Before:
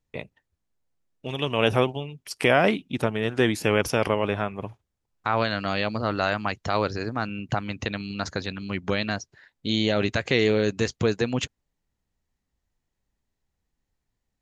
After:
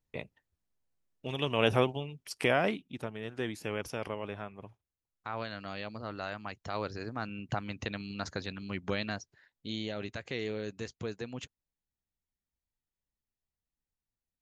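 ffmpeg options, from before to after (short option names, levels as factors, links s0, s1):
-af "volume=1.19,afade=t=out:st=2.17:d=0.83:silence=0.354813,afade=t=in:st=6.42:d=1.08:silence=0.473151,afade=t=out:st=8.96:d=0.99:silence=0.421697"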